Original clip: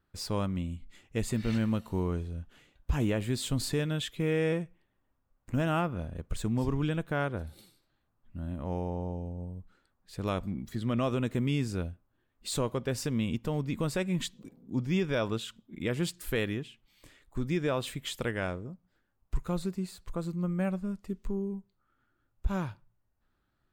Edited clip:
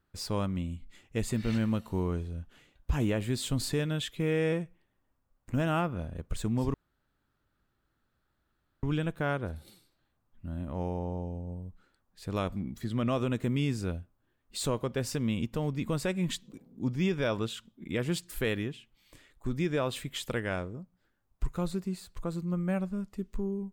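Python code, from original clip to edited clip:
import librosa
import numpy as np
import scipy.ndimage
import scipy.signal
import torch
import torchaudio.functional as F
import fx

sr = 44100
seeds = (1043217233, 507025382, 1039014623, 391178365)

y = fx.edit(x, sr, fx.insert_room_tone(at_s=6.74, length_s=2.09), tone=tone)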